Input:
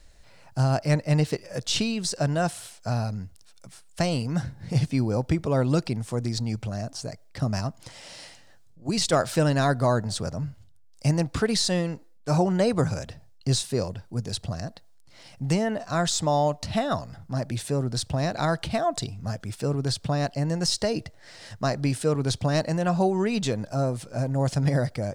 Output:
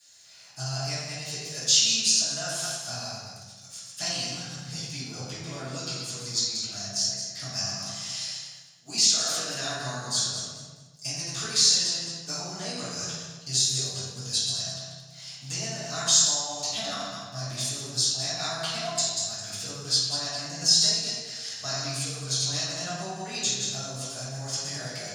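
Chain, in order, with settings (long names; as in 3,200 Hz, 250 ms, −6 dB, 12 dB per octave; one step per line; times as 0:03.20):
feedback delay that plays each chunk backwards 106 ms, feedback 51%, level −5.5 dB
downward compressor, threshold −24 dBFS, peak gain reduction 8.5 dB
first difference
transient designer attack 0 dB, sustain −6 dB
convolution reverb RT60 1.1 s, pre-delay 3 ms, DRR −14 dB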